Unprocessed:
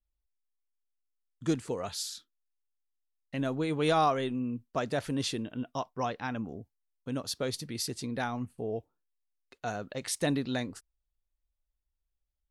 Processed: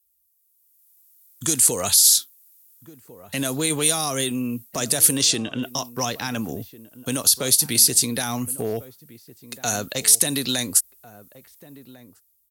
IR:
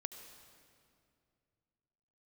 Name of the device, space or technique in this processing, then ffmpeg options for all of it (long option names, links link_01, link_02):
FM broadcast chain: -filter_complex "[0:a]asettb=1/sr,asplit=3[link_01][link_02][link_03];[link_01]atrim=end=5.174[link_04];[link_02]atrim=start=5.17:end=5.63,asetpts=PTS-STARTPTS,afade=type=in:duration=0.004:curve=qsin,afade=type=out:start_time=0.456:duration=0.004:curve=qsin,lowpass=frequency=7300:width=0.5412,lowpass=frequency=7300:width=1.3066[link_05];[link_03]atrim=start=5.626[link_06];[link_04][link_05]acrossfade=duration=0.004:curve1=hsin:curve2=qsin[link_07];[link_07][link_06]acrossfade=duration=0.004:curve1=qsin:curve2=hsin,highpass=frequency=46:width=0.5412,highpass=frequency=46:width=1.3066,dynaudnorm=framelen=180:gausssize=9:maxgain=15dB,acrossover=split=320|5300[link_08][link_09][link_10];[link_08]acompressor=threshold=-23dB:ratio=4[link_11];[link_09]acompressor=threshold=-21dB:ratio=4[link_12];[link_10]acompressor=threshold=-30dB:ratio=4[link_13];[link_11][link_12][link_13]amix=inputs=3:normalize=0,aemphasis=mode=production:type=75fm,alimiter=limit=-13.5dB:level=0:latency=1:release=55,asoftclip=type=hard:threshold=-15dB,lowpass=frequency=15000:width=0.5412,lowpass=frequency=15000:width=1.3066,aemphasis=mode=production:type=75fm,asplit=2[link_14][link_15];[link_15]adelay=1399,volume=-17dB,highshelf=frequency=4000:gain=-31.5[link_16];[link_14][link_16]amix=inputs=2:normalize=0,volume=-2dB"